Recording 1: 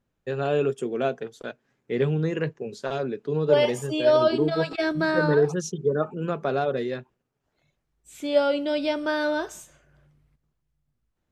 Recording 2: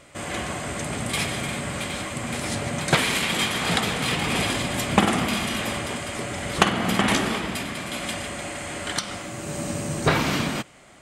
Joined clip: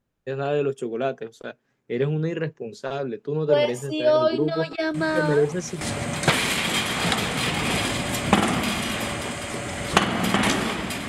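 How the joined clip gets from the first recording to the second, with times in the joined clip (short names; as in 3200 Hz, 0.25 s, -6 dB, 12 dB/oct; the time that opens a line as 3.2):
recording 1
4.94 add recording 2 from 1.59 s 0.87 s -10.5 dB
5.81 switch to recording 2 from 2.46 s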